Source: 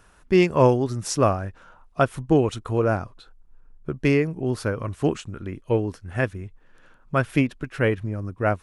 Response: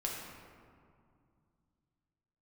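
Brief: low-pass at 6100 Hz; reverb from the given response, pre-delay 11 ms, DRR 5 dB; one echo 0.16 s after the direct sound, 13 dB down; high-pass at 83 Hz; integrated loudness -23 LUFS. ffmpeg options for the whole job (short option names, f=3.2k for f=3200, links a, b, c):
-filter_complex "[0:a]highpass=83,lowpass=6.1k,aecho=1:1:160:0.224,asplit=2[a][b];[1:a]atrim=start_sample=2205,adelay=11[c];[b][c]afir=irnorm=-1:irlink=0,volume=-7.5dB[d];[a][d]amix=inputs=2:normalize=0,volume=-0.5dB"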